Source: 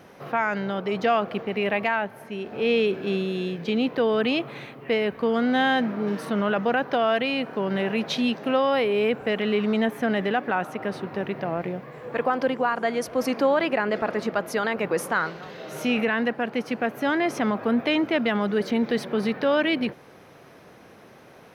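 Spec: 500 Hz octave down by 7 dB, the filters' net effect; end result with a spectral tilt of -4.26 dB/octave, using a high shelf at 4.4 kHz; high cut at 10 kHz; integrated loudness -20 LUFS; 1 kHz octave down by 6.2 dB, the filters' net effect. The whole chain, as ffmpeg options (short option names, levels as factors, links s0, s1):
-af "lowpass=10000,equalizer=f=500:t=o:g=-7,equalizer=f=1000:t=o:g=-6.5,highshelf=f=4400:g=8.5,volume=2.37"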